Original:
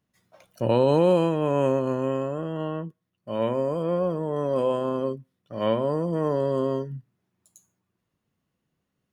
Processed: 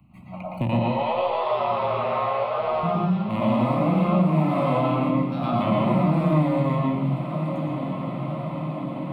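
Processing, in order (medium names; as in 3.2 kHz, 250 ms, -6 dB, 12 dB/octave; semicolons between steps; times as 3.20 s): local Wiener filter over 25 samples; peak limiter -19.5 dBFS, peak gain reduction 10 dB; static phaser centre 1.6 kHz, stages 6; ever faster or slower copies 435 ms, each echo +2 st, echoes 2, each echo -6 dB; 0.77–2.83 s: brick-wall FIR band-pass 370–5700 Hz; echo that smears into a reverb 1134 ms, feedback 52%, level -15 dB; reverberation RT60 0.70 s, pre-delay 113 ms, DRR -3.5 dB; three bands compressed up and down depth 70%; trim +8 dB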